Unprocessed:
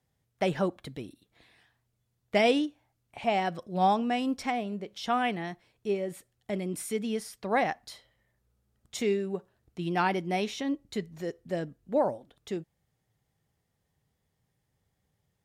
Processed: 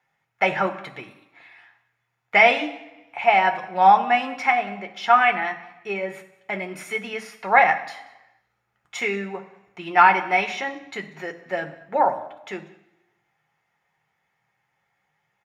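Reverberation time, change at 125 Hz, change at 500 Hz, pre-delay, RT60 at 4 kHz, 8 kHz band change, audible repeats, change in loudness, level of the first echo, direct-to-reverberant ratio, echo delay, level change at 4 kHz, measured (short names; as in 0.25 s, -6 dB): 1.0 s, n/a, +4.0 dB, 3 ms, 0.90 s, n/a, 1, +10.0 dB, -23.0 dB, 5.0 dB, 0.187 s, +5.5 dB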